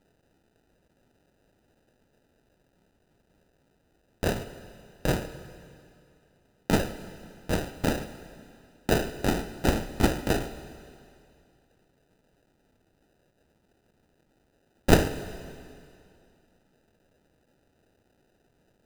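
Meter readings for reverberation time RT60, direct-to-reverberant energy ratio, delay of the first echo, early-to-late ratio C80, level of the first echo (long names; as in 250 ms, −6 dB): 2.4 s, 11.5 dB, no echo audible, 13.0 dB, no echo audible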